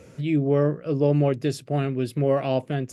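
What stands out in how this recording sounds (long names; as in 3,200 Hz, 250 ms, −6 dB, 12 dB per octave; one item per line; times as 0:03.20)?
background noise floor −50 dBFS
spectral slope −7.5 dB per octave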